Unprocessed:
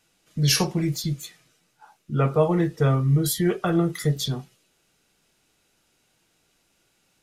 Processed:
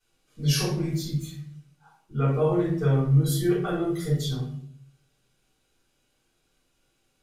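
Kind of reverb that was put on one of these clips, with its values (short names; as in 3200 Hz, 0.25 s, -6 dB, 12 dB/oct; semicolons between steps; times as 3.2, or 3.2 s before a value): shoebox room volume 79 m³, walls mixed, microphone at 3.8 m; gain -18.5 dB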